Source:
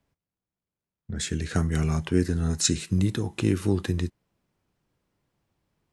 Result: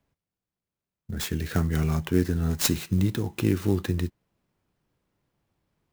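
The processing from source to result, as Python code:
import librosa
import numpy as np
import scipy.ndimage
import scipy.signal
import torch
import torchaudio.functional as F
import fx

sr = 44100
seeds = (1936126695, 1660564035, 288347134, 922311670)

y = fx.clock_jitter(x, sr, seeds[0], jitter_ms=0.026)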